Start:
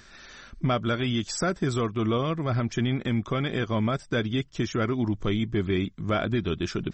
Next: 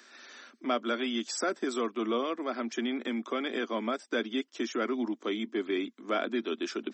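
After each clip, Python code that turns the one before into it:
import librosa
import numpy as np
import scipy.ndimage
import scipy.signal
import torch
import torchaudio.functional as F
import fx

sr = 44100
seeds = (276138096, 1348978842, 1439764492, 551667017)

y = scipy.signal.sosfilt(scipy.signal.butter(12, 230.0, 'highpass', fs=sr, output='sos'), x)
y = y * 10.0 ** (-3.0 / 20.0)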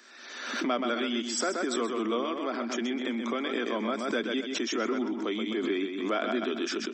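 y = fx.echo_feedback(x, sr, ms=128, feedback_pct=30, wet_db=-7.0)
y = fx.pre_swell(y, sr, db_per_s=44.0)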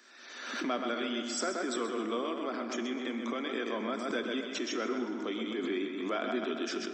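y = fx.rev_plate(x, sr, seeds[0], rt60_s=3.7, hf_ratio=0.45, predelay_ms=0, drr_db=8.0)
y = y * 10.0 ** (-4.5 / 20.0)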